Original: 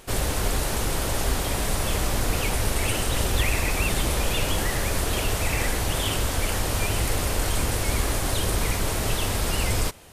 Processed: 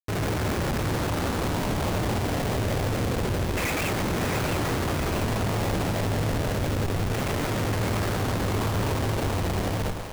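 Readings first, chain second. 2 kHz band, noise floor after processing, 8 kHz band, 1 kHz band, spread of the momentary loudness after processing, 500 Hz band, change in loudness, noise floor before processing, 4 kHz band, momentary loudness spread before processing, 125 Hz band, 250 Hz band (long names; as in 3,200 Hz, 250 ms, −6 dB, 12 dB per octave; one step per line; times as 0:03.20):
−2.5 dB, −28 dBFS, −9.5 dB, +0.5 dB, 1 LU, +1.5 dB, −1.5 dB, −27 dBFS, −6.0 dB, 2 LU, +1.5 dB, +4.0 dB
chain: high-pass filter 87 Hz 24 dB per octave
auto-filter low-pass saw down 0.28 Hz 400–2,500 Hz
comparator with hysteresis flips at −27 dBFS
echo with a time of its own for lows and highs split 440 Hz, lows 104 ms, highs 669 ms, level −7 dB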